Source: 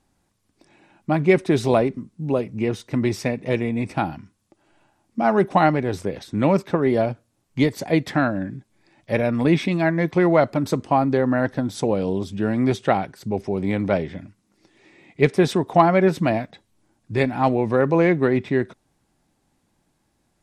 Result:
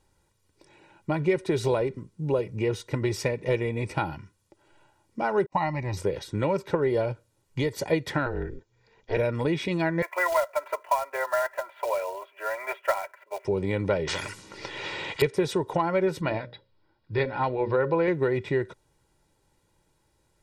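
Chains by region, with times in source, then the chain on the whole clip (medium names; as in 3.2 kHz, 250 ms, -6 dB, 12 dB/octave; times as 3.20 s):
5.46–5.97 s: static phaser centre 2.2 kHz, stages 8 + gate -41 dBFS, range -35 dB
8.26–9.17 s: Chebyshev low-pass 7.3 kHz, order 10 + ring modulator 120 Hz
10.02–13.45 s: Chebyshev band-pass 550–2600 Hz, order 4 + comb 3 ms, depth 98% + short-mantissa float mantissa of 2-bit
14.07–15.22 s: level-controlled noise filter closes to 2.5 kHz, open at -33 dBFS + tilt EQ +2 dB/octave + spectrum-flattening compressor 4:1
16.21–18.08 s: rippled Chebyshev low-pass 5.2 kHz, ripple 3 dB + hum notches 60/120/180/240/300/360/420/480/540/600 Hz
whole clip: compression, threshold -20 dBFS; comb 2.1 ms, depth 65%; trim -1.5 dB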